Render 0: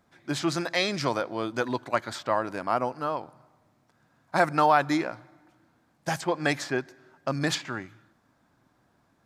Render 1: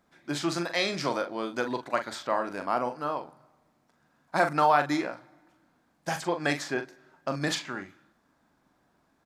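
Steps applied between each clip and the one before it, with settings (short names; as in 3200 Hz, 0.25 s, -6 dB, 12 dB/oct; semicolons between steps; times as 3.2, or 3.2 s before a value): bell 110 Hz -14 dB 0.36 oct; doubler 41 ms -8 dB; gain -2 dB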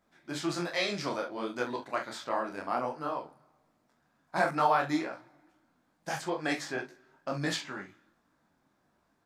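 detuned doubles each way 46 cents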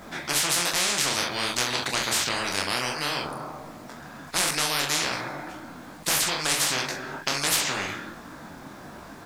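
spectral compressor 10:1; gain +6 dB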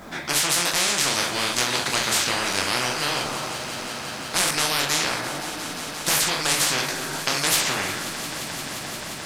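swelling echo 0.175 s, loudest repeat 5, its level -16.5 dB; gain +2.5 dB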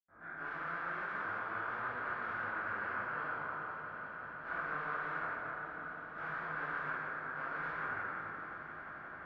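ladder low-pass 1600 Hz, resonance 70%; reverb RT60 2.6 s, pre-delay 85 ms; gain +12.5 dB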